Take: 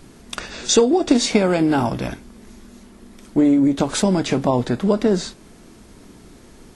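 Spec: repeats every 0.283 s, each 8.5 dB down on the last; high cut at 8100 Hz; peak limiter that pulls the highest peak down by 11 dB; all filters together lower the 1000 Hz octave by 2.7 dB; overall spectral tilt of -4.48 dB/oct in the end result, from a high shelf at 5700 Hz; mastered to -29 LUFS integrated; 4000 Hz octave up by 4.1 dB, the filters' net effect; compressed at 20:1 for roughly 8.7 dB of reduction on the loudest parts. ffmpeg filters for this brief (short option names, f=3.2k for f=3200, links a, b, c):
-af "lowpass=8.1k,equalizer=f=1k:t=o:g=-4,equalizer=f=4k:t=o:g=3.5,highshelf=f=5.7k:g=4.5,acompressor=threshold=-18dB:ratio=20,alimiter=limit=-17.5dB:level=0:latency=1,aecho=1:1:283|566|849|1132:0.376|0.143|0.0543|0.0206,volume=-2.5dB"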